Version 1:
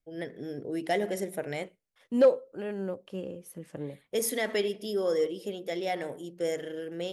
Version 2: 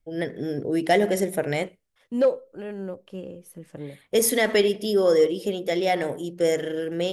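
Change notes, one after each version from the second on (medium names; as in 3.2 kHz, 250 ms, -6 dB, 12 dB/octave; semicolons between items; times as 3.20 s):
first voice +8.5 dB; master: add bass shelf 94 Hz +7 dB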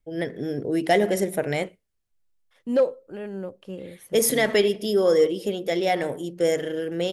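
second voice: entry +0.55 s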